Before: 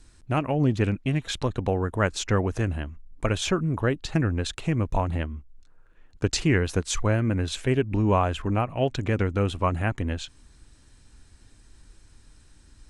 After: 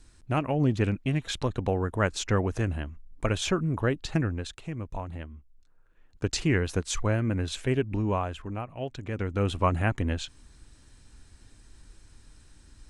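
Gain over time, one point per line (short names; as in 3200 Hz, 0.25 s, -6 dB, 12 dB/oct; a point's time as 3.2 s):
4.15 s -2 dB
4.62 s -10.5 dB
5.2 s -10.5 dB
6.45 s -3 dB
7.83 s -3 dB
8.5 s -10 dB
9.05 s -10 dB
9.53 s 0 dB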